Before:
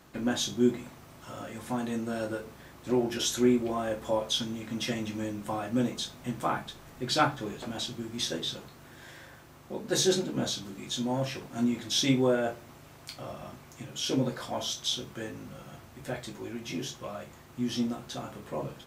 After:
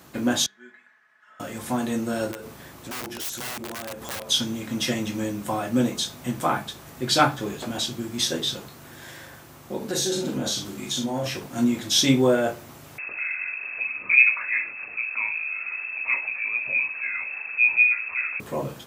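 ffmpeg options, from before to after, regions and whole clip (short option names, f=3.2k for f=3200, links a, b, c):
-filter_complex "[0:a]asettb=1/sr,asplit=3[a][b][c];[a]atrim=end=0.464[d];[b]atrim=start=0.46:end=1.4,asetpts=PTS-STARTPTS,afade=t=in:d=0.004:c=qsin,afade=t=out:st=0.936:d=0.004:c=qsin,bandpass=f=1.7k:t=q:w=10,aecho=1:1:4.7:0.59,atrim=end_sample=41454[e];[c]atrim=start=1.396[f];[d][e]acrossfade=d=0.004:c1=hsin:c2=qsin[g];[g][f]acrossfade=d=0.004:c1=qsin:c2=hsin,asettb=1/sr,asplit=3[h][i][j];[h]atrim=end=2.314[k];[i]atrim=start=2.31:end=4.29,asetpts=PTS-STARTPTS,afade=t=in:d=0.004:c=qsin,afade=t=out:st=1.976:d=0.004:c=qsin,aeval=exprs='(mod(16.8*val(0)+1,2)-1)/16.8':c=same,acompressor=threshold=-40dB:ratio=4:attack=3.2:release=140:knee=1:detection=peak[l];[j]atrim=start=4.286[m];[k][l]acrossfade=d=0.004:c1=hsin:c2=qsin[n];[n][m]acrossfade=d=0.004:c1=qsin:c2=hsin,asettb=1/sr,asplit=3[o][p][q];[o]atrim=end=9.774[r];[p]atrim=start=9.77:end=11.26,asetpts=PTS-STARTPTS,afade=t=in:d=0.004:c=qsin,afade=t=out:st=1.486:d=0.004:c=qsin,acompressor=threshold=-30dB:ratio=6:attack=3.2:release=140:knee=1:detection=peak,asplit=2[s][t];[t]adelay=43,volume=-5.5dB[u];[s][u]amix=inputs=2:normalize=0,atrim=end_sample=65709[v];[q]atrim=start=11.256[w];[r][v]acrossfade=d=0.004:c1=hsin:c2=qsin[x];[x][w]acrossfade=d=0.004:c1=qsin:c2=hsin,asettb=1/sr,asplit=3[y][z][aa];[y]atrim=end=12.984[ab];[z]atrim=start=12.98:end=18.4,asetpts=PTS-STARTPTS,afade=t=in:d=0.004:c=qsin,afade=t=out:st=5.416:d=0.004:c=qsin,aemphasis=mode=reproduction:type=bsi,acompressor=mode=upward:threshold=-32dB:ratio=2.5:attack=3.2:release=140:knee=2.83:detection=peak,lowpass=f=2.3k:t=q:w=0.5098,lowpass=f=2.3k:t=q:w=0.6013,lowpass=f=2.3k:t=q:w=0.9,lowpass=f=2.3k:t=q:w=2.563,afreqshift=-2700[ac];[aa]atrim=start=18.396[ad];[ab][ac]acrossfade=d=0.004:c1=hsin:c2=qsin[ae];[ae][ad]acrossfade=d=0.004:c1=qsin:c2=hsin,highpass=66,highshelf=f=7.8k:g=7.5,volume=6dB"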